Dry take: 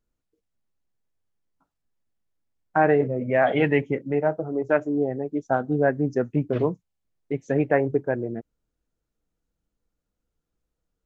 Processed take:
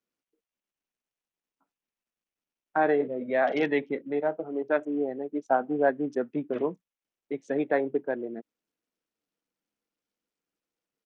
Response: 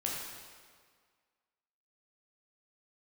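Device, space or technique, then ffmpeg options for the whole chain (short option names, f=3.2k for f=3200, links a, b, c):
Bluetooth headset: -filter_complex "[0:a]asettb=1/sr,asplit=3[a][b][c];[a]atrim=end=5.324[d];[b]atrim=start=5.32:end=5.9,asetpts=PTS-STARTPTS,afade=t=in:d=0.004:c=qsin,afade=t=out:st=0.576:d=0.004:c=qsin,equalizer=f=850:t=o:w=1.1:g=5.5[e];[c]atrim=start=5.896[f];[d][e]acrossfade=d=0.004:c1=hsin:c2=qsin[g];[g][f]acrossfade=d=0.004:c1=qsin:c2=hsin,highpass=f=210:w=0.5412,highpass=f=210:w=1.3066,aresample=16000,aresample=44100,volume=-4.5dB" -ar 48000 -c:a sbc -b:a 64k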